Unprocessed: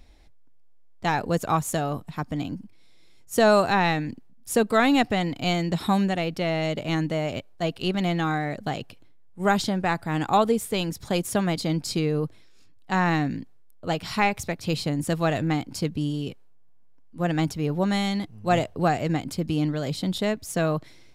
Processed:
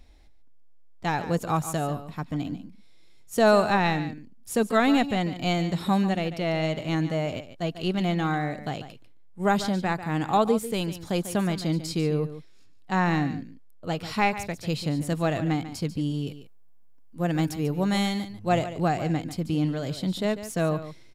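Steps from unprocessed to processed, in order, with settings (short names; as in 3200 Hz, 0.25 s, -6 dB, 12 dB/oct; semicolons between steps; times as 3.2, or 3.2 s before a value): 16.27–18.34 high shelf 9900 Hz +12 dB; echo 0.144 s -13 dB; harmonic-percussive split harmonic +4 dB; gain -4.5 dB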